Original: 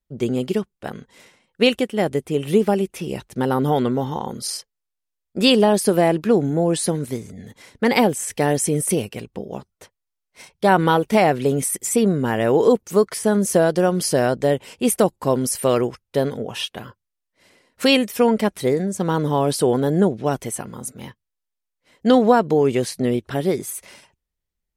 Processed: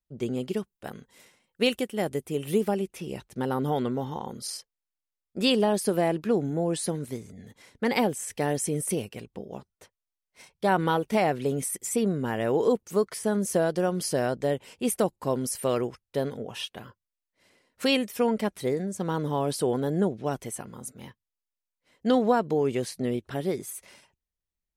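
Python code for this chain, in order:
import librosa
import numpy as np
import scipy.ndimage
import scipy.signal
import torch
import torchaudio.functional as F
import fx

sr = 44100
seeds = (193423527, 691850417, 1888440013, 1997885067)

y = fx.high_shelf(x, sr, hz=9500.0, db=12.0, at=(0.57, 2.69))
y = F.gain(torch.from_numpy(y), -8.0).numpy()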